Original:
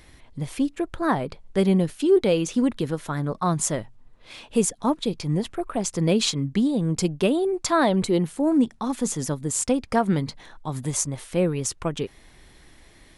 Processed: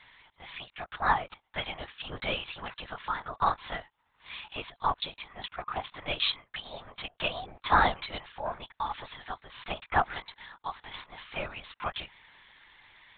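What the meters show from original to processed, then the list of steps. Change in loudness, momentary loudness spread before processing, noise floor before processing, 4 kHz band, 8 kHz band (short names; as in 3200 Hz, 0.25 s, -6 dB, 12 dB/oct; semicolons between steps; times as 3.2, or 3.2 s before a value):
-9.0 dB, 9 LU, -53 dBFS, -2.0 dB, under -40 dB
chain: inverse Chebyshev high-pass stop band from 230 Hz, stop band 60 dB; LPC vocoder at 8 kHz whisper; gain +1.5 dB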